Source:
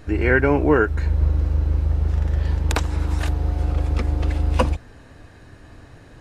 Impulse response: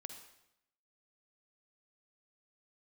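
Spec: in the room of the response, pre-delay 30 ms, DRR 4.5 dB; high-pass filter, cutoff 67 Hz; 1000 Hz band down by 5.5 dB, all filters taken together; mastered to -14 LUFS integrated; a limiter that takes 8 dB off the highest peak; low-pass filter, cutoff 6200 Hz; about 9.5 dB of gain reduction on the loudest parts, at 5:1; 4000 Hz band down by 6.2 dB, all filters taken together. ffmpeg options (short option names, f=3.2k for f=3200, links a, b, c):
-filter_complex "[0:a]highpass=67,lowpass=6.2k,equalizer=f=1k:t=o:g=-7,equalizer=f=4k:t=o:g=-7.5,acompressor=threshold=-24dB:ratio=5,alimiter=limit=-22dB:level=0:latency=1,asplit=2[a][b];[1:a]atrim=start_sample=2205,adelay=30[c];[b][c]afir=irnorm=-1:irlink=0,volume=0dB[d];[a][d]amix=inputs=2:normalize=0,volume=16.5dB"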